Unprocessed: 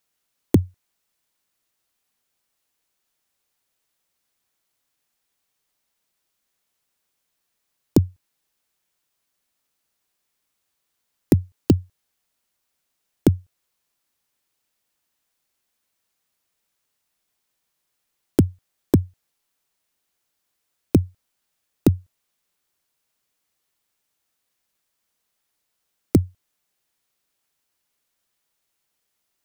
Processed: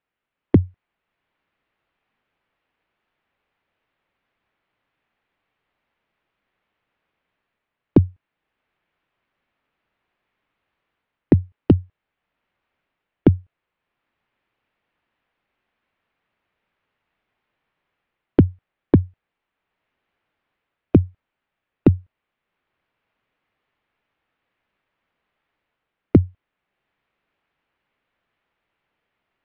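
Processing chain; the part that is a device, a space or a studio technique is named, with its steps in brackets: action camera in a waterproof case (LPF 2700 Hz 24 dB/oct; AGC gain up to 7.5 dB; AAC 64 kbps 16000 Hz)

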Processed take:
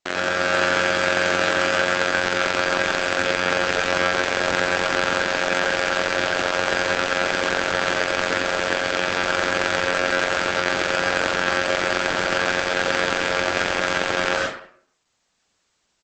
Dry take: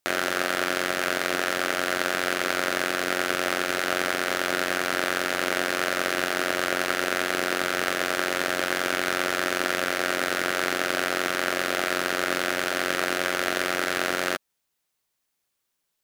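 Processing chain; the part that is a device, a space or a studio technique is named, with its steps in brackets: 8.64–9.15 bell 63 Hz -2 dB 0.35 oct; speakerphone in a meeting room (reverb RT60 0.55 s, pre-delay 88 ms, DRR -0.5 dB; speakerphone echo 0.15 s, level -20 dB; AGC gain up to 10.5 dB; Opus 12 kbps 48000 Hz)

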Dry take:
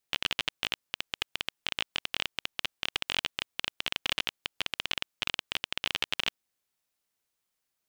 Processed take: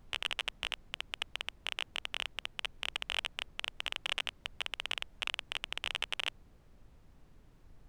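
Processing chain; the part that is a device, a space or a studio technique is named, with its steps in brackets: aircraft cabin announcement (BPF 440–3500 Hz; soft clip -18 dBFS, distortion -14 dB; brown noise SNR 15 dB)

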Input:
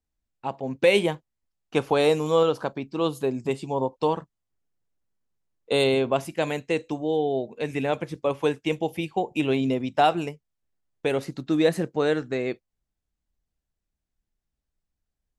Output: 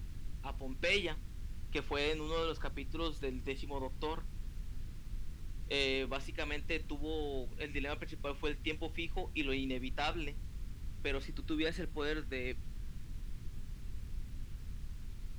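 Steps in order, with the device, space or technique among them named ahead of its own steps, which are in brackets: aircraft cabin announcement (BPF 390–3800 Hz; soft clip -14.5 dBFS, distortion -18 dB; brown noise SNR 11 dB); 11.23–12.05 notch 5900 Hz, Q 13; passive tone stack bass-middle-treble 6-0-2; gain +13.5 dB

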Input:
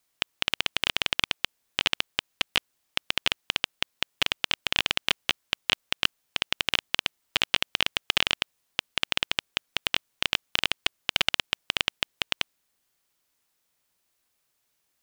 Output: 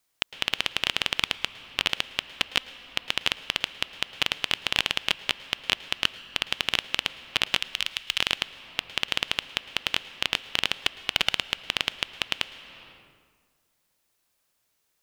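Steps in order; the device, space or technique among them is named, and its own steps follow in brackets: 7.57–8.19 passive tone stack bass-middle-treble 10-0-10; compressed reverb return (on a send at -3 dB: reverb RT60 1.7 s, pre-delay 0.105 s + compressor 10:1, threshold -39 dBFS, peak gain reduction 15.5 dB)

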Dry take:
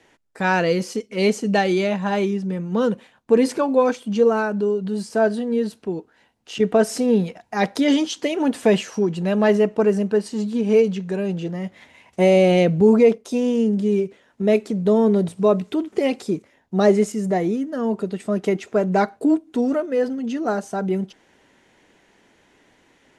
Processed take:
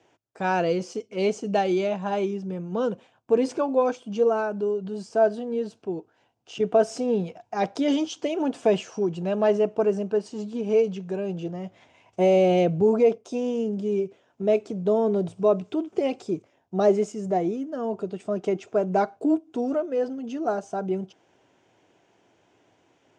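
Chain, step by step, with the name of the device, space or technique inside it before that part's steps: car door speaker (speaker cabinet 88–7300 Hz, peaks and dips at 110 Hz +8 dB, 220 Hz -5 dB, 350 Hz +3 dB, 690 Hz +6 dB, 1900 Hz -9 dB, 4100 Hz -6 dB); gain -5.5 dB

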